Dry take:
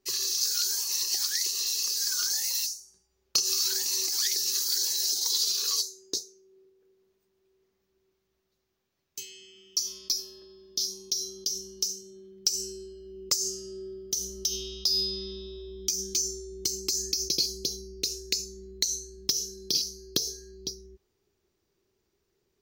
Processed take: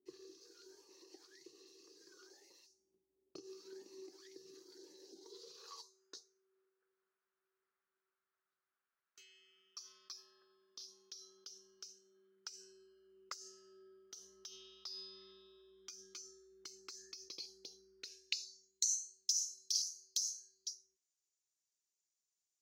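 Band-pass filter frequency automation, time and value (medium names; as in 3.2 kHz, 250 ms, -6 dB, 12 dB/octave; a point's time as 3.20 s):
band-pass filter, Q 3.8
5.20 s 320 Hz
6.05 s 1.4 kHz
18.00 s 1.4 kHz
18.72 s 7.1 kHz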